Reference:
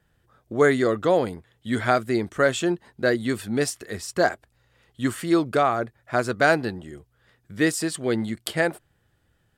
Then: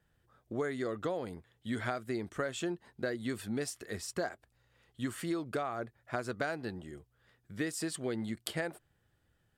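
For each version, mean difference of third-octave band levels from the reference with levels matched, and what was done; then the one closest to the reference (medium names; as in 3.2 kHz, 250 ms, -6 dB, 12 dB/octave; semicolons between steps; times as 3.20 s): 3.5 dB: compression 12:1, threshold -24 dBFS, peak gain reduction 12 dB; trim -7 dB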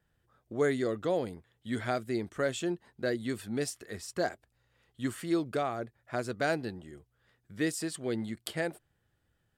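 1.0 dB: dynamic bell 1.2 kHz, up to -6 dB, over -33 dBFS, Q 1; trim -8.5 dB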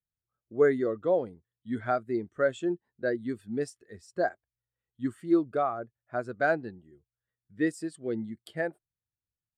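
10.0 dB: spectral contrast expander 1.5:1; trim -7.5 dB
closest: second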